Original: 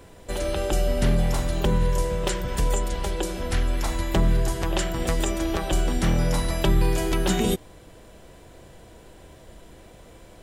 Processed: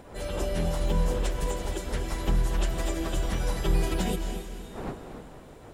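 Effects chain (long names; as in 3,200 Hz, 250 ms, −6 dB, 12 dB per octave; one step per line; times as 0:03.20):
wind on the microphone 550 Hz −38 dBFS
feedback delay with all-pass diffusion 463 ms, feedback 49%, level −7.5 dB
time stretch by phase vocoder 0.55×
level −3 dB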